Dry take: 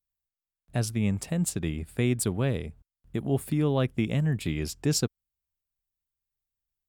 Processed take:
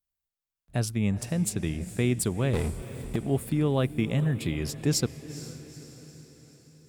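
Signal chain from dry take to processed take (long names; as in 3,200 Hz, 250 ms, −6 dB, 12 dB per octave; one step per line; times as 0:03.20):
0:02.53–0:03.16: power curve on the samples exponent 0.5
feedback delay with all-pass diffusion 455 ms, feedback 53%, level −14 dB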